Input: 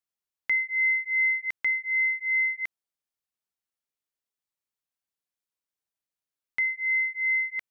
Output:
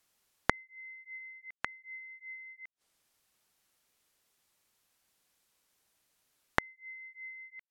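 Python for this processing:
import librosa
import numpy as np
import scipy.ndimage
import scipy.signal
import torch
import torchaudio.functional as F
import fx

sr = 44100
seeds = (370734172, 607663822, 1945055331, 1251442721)

y = fx.gate_flip(x, sr, shuts_db=-35.0, range_db=-34)
y = fx.env_lowpass_down(y, sr, base_hz=1400.0, full_db=-55.5)
y = y * 10.0 ** (17.0 / 20.0)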